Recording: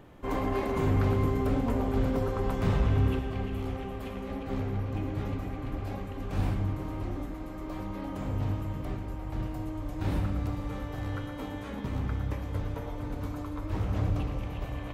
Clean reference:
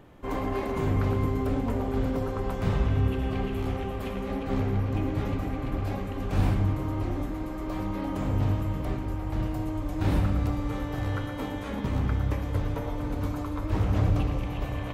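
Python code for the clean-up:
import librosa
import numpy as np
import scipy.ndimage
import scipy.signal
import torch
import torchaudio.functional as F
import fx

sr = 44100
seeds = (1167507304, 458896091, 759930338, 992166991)

y = fx.fix_declip(x, sr, threshold_db=-18.5)
y = fx.fix_echo_inverse(y, sr, delay_ms=476, level_db=-14.0)
y = fx.fix_level(y, sr, at_s=3.19, step_db=5.0)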